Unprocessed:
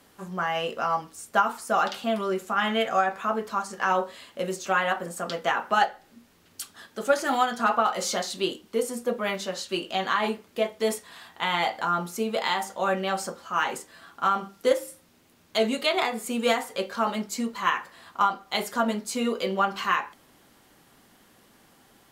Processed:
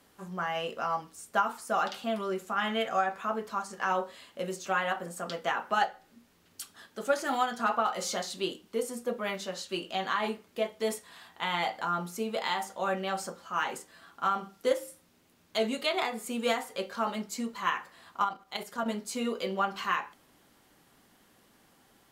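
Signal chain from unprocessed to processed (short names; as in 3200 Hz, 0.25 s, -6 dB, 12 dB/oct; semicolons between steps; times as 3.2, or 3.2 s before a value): resonator 59 Hz, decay 0.39 s, harmonics odd, mix 30%; 18.24–18.86 level quantiser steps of 9 dB; gain -2.5 dB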